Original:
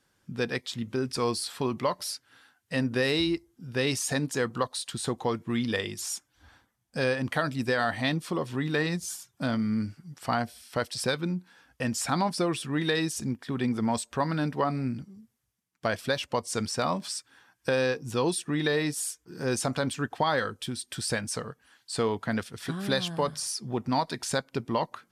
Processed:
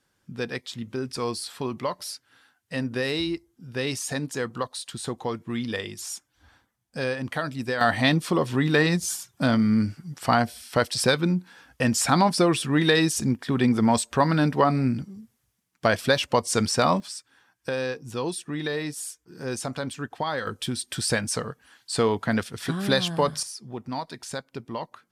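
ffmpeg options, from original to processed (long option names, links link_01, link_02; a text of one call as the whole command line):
ffmpeg -i in.wav -af "asetnsamples=nb_out_samples=441:pad=0,asendcmd='7.81 volume volume 7dB;17 volume volume -2.5dB;20.47 volume volume 5dB;23.43 volume volume -5dB',volume=-1dB" out.wav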